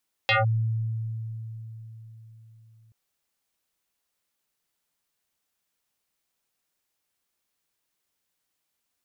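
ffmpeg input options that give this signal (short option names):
-f lavfi -i "aevalsrc='0.133*pow(10,-3*t/4.27)*sin(2*PI*112*t+5.6*clip(1-t/0.16,0,1)*sin(2*PI*5.92*112*t))':d=2.63:s=44100"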